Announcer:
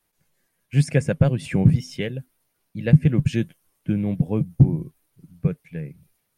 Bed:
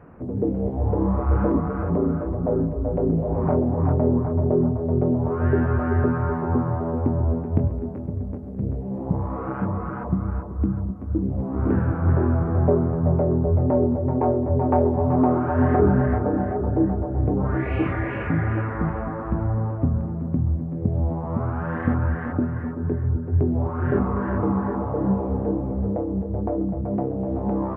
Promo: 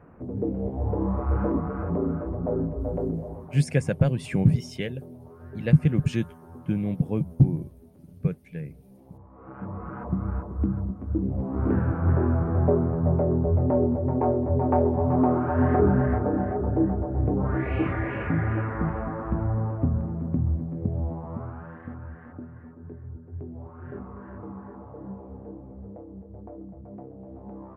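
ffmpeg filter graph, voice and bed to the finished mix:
-filter_complex "[0:a]adelay=2800,volume=-3.5dB[a];[1:a]volume=16dB,afade=t=out:st=2.93:d=0.55:silence=0.11885,afade=t=in:st=9.33:d=0.99:silence=0.0944061,afade=t=out:st=20.54:d=1.26:silence=0.188365[b];[a][b]amix=inputs=2:normalize=0"

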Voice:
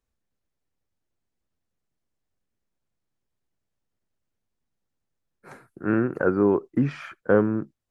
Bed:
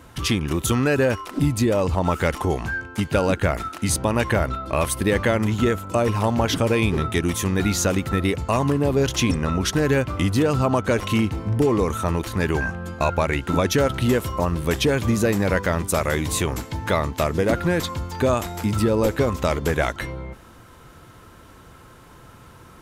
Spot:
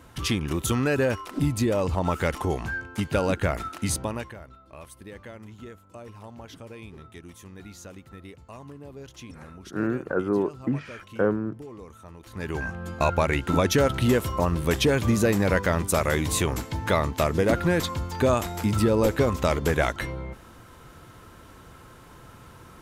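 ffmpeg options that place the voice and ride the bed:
-filter_complex "[0:a]adelay=3900,volume=-4dB[a];[1:a]volume=17dB,afade=t=out:st=3.86:d=0.48:silence=0.11885,afade=t=in:st=12.2:d=0.82:silence=0.0891251[b];[a][b]amix=inputs=2:normalize=0"

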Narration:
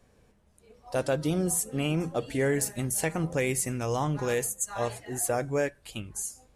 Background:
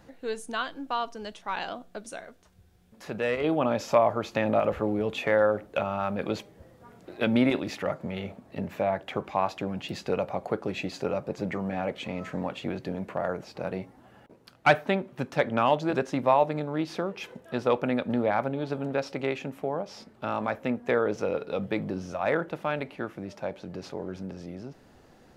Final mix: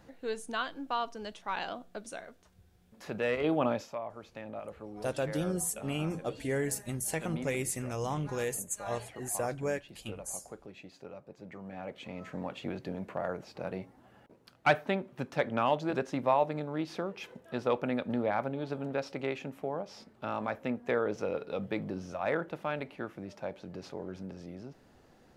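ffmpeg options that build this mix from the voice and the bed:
-filter_complex "[0:a]adelay=4100,volume=-5.5dB[a];[1:a]volume=9.5dB,afade=t=out:st=3.68:d=0.23:silence=0.188365,afade=t=in:st=11.42:d=1.24:silence=0.237137[b];[a][b]amix=inputs=2:normalize=0"

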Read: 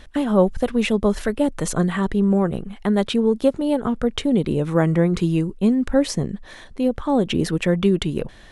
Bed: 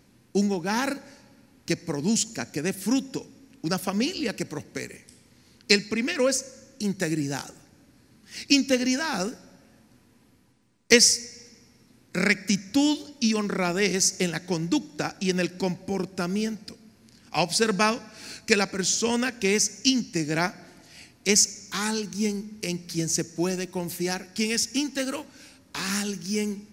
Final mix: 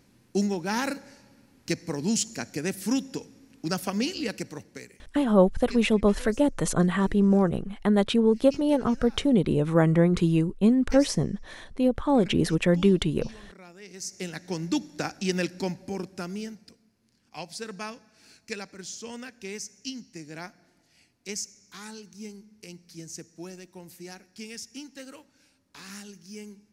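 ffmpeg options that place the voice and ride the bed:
-filter_complex "[0:a]adelay=5000,volume=-2.5dB[a];[1:a]volume=19dB,afade=t=out:st=4.23:d=0.94:silence=0.0891251,afade=t=in:st=13.89:d=0.9:silence=0.0891251,afade=t=out:st=15.43:d=1.48:silence=0.237137[b];[a][b]amix=inputs=2:normalize=0"

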